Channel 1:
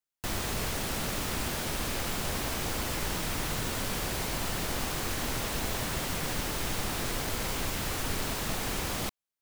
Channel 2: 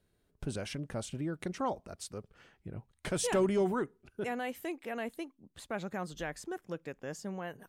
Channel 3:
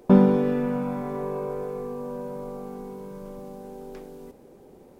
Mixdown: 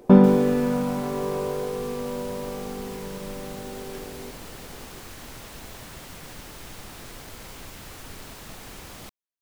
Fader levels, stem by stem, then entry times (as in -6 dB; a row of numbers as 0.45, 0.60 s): -9.0 dB, off, +2.5 dB; 0.00 s, off, 0.00 s